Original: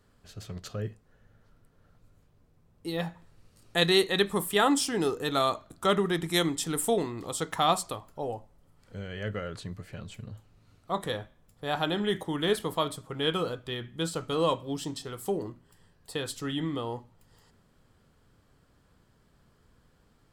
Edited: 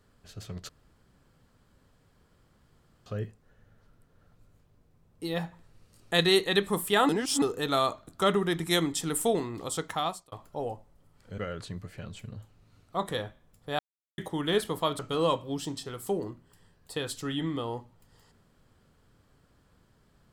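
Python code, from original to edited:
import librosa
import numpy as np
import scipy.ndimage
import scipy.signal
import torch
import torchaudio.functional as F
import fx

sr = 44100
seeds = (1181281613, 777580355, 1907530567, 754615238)

y = fx.edit(x, sr, fx.insert_room_tone(at_s=0.69, length_s=2.37),
    fx.reverse_span(start_s=4.72, length_s=0.33),
    fx.fade_out_span(start_s=7.38, length_s=0.57),
    fx.cut(start_s=9.01, length_s=0.32),
    fx.silence(start_s=11.74, length_s=0.39),
    fx.cut(start_s=12.94, length_s=1.24), tone=tone)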